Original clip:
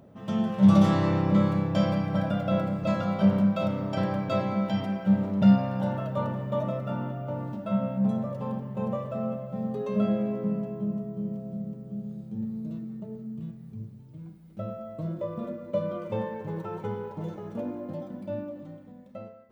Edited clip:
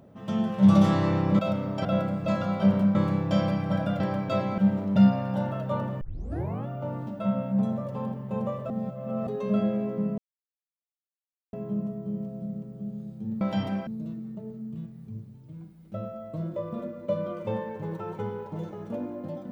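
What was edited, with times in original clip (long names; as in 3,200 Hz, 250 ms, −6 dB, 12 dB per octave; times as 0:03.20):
0:01.39–0:02.44: swap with 0:03.54–0:04.00
0:04.58–0:05.04: move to 0:12.52
0:06.47: tape start 0.66 s
0:09.16–0:09.73: reverse
0:10.64: splice in silence 1.35 s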